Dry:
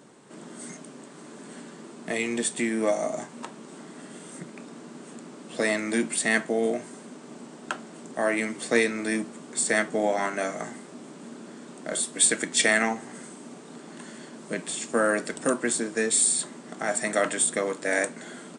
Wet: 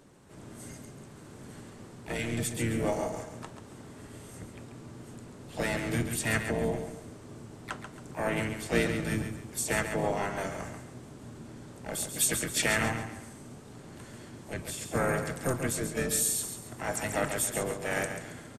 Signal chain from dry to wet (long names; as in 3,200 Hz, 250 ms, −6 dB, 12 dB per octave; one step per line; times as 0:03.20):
sub-octave generator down 1 octave, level +2 dB
pitch-shifted copies added −5 semitones −10 dB, +5 semitones −8 dB, +7 semitones −18 dB
on a send: repeating echo 137 ms, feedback 35%, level −8 dB
on the sum: level −7.5 dB